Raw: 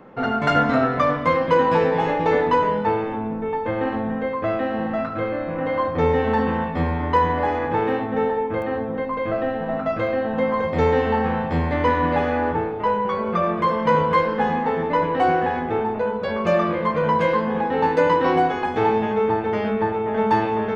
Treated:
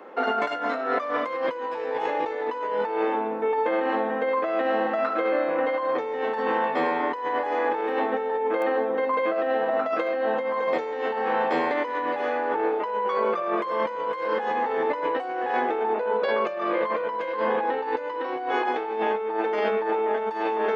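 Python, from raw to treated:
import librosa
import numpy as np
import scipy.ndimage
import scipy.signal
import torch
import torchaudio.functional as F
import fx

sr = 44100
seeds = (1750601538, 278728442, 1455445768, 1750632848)

y = fx.lowpass(x, sr, hz=4900.0, slope=12, at=(15.83, 19.39))
y = scipy.signal.sosfilt(scipy.signal.butter(4, 330.0, 'highpass', fs=sr, output='sos'), y)
y = fx.over_compress(y, sr, threshold_db=-26.0, ratio=-1.0)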